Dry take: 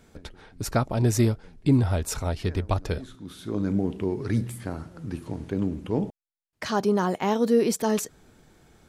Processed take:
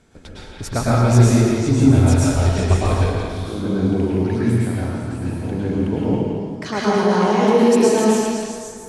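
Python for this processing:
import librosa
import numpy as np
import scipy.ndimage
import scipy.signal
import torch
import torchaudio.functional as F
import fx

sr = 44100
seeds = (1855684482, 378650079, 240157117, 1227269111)

p1 = scipy.signal.sosfilt(scipy.signal.butter(6, 11000.0, 'lowpass', fs=sr, output='sos'), x)
p2 = p1 + fx.echo_stepped(p1, sr, ms=169, hz=2500.0, octaves=0.7, feedback_pct=70, wet_db=-1.5, dry=0)
y = fx.rev_plate(p2, sr, seeds[0], rt60_s=2.2, hf_ratio=0.5, predelay_ms=95, drr_db=-7.5)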